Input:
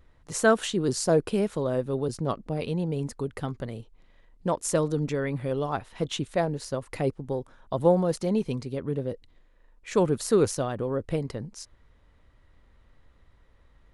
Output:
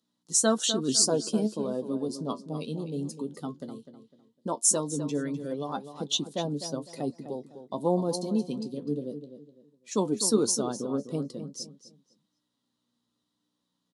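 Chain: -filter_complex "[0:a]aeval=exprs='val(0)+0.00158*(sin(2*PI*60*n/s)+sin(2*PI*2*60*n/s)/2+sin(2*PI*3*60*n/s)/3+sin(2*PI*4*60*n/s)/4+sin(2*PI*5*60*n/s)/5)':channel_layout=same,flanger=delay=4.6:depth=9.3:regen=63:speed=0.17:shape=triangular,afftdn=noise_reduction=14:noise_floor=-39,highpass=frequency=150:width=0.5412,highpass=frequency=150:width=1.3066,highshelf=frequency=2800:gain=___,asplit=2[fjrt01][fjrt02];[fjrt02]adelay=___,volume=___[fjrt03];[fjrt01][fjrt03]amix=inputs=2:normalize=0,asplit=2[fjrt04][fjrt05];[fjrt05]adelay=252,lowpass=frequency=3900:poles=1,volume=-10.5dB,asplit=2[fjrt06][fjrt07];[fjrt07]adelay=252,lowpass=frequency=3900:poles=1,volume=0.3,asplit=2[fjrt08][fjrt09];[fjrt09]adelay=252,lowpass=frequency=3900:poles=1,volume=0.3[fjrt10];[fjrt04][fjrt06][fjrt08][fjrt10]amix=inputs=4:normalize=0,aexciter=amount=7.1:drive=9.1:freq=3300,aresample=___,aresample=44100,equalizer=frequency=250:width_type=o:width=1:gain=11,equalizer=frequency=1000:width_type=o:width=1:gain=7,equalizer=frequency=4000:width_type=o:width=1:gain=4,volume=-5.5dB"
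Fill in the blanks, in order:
-5, 14, -12.5dB, 32000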